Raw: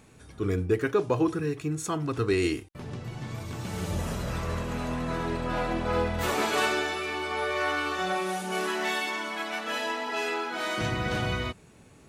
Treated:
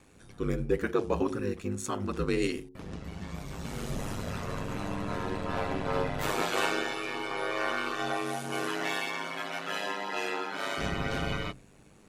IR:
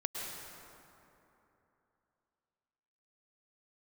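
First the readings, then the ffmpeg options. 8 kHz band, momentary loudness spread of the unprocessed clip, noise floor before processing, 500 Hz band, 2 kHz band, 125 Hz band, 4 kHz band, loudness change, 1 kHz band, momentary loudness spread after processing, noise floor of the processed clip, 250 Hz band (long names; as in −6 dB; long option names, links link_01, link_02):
−3.0 dB, 9 LU, −54 dBFS, −3.0 dB, −3.5 dB, −4.5 dB, −3.0 dB, −3.5 dB, −3.0 dB, 9 LU, −56 dBFS, −3.0 dB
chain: -af "bandreject=frequency=79.82:width_type=h:width=4,bandreject=frequency=159.64:width_type=h:width=4,bandreject=frequency=239.46:width_type=h:width=4,bandreject=frequency=319.28:width_type=h:width=4,bandreject=frequency=399.1:width_type=h:width=4,bandreject=frequency=478.92:width_type=h:width=4,bandreject=frequency=558.74:width_type=h:width=4,bandreject=frequency=638.56:width_type=h:width=4,bandreject=frequency=718.38:width_type=h:width=4,bandreject=frequency=798.2:width_type=h:width=4,bandreject=frequency=878.02:width_type=h:width=4,aeval=exprs='val(0)*sin(2*PI*50*n/s)':channel_layout=same"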